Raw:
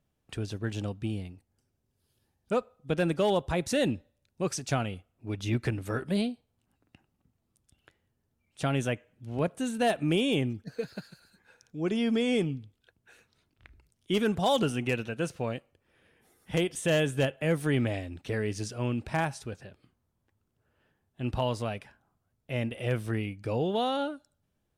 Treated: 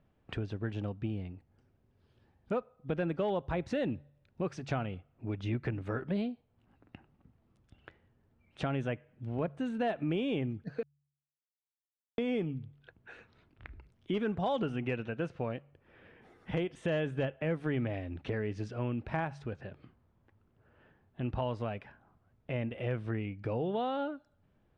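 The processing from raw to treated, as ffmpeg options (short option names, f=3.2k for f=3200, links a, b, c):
-filter_complex "[0:a]asplit=3[a][b][c];[a]atrim=end=10.83,asetpts=PTS-STARTPTS,afade=t=out:st=10.826:d=0.004:c=hsin[d];[b]atrim=start=10.83:end=12.18,asetpts=PTS-STARTPTS,volume=0[e];[c]atrim=start=12.18,asetpts=PTS-STARTPTS,afade=t=in:d=0.004:c=hsin[f];[d][e][f]concat=n=3:v=0:a=1,lowpass=2.3k,bandreject=f=71.54:t=h:w=4,bandreject=f=143.08:t=h:w=4,acompressor=threshold=-49dB:ratio=2,volume=8dB"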